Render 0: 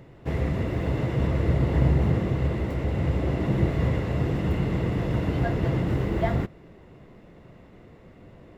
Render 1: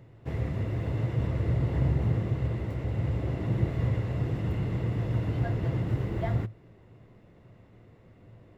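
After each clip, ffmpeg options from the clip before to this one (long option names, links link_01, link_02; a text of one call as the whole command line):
ffmpeg -i in.wav -af "equalizer=frequency=110:width=5:gain=12.5,volume=-7.5dB" out.wav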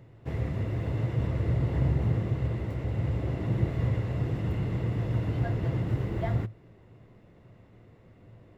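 ffmpeg -i in.wav -af anull out.wav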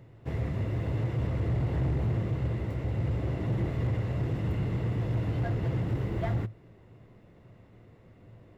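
ffmpeg -i in.wav -af "asoftclip=type=hard:threshold=-24dB" out.wav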